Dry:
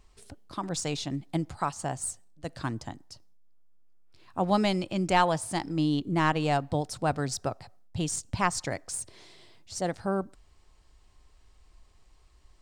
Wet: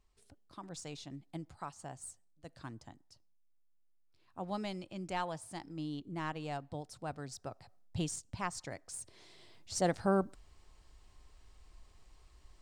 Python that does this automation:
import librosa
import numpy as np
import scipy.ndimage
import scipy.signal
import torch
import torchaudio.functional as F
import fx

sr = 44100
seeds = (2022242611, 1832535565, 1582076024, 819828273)

y = fx.gain(x, sr, db=fx.line((7.4, -14.0), (7.98, -4.0), (8.21, -11.5), (8.81, -11.5), (9.76, -0.5)))